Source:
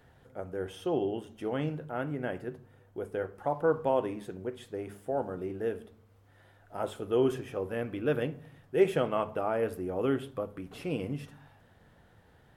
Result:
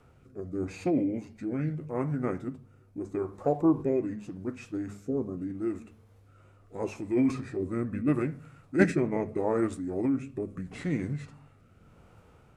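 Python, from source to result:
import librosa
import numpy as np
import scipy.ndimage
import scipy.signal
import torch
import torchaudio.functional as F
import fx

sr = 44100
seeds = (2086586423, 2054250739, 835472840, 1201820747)

y = fx.rotary(x, sr, hz=0.8)
y = fx.formant_shift(y, sr, semitones=-5)
y = y * librosa.db_to_amplitude(4.5)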